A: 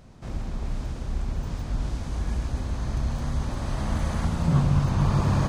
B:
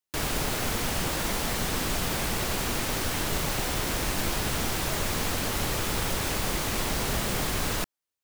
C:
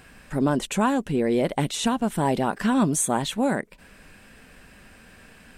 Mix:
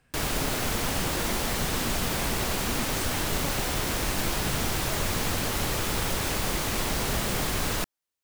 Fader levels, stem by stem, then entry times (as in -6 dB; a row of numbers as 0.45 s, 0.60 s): -19.0 dB, +0.5 dB, -18.0 dB; 0.00 s, 0.00 s, 0.00 s